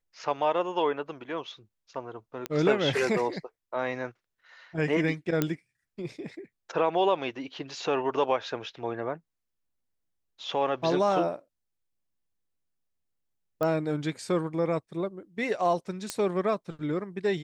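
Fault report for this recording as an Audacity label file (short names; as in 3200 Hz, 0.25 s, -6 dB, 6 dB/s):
2.460000	2.460000	pop -15 dBFS
5.420000	5.420000	pop -11 dBFS
13.630000	13.630000	pop -17 dBFS
16.100000	16.100000	pop -14 dBFS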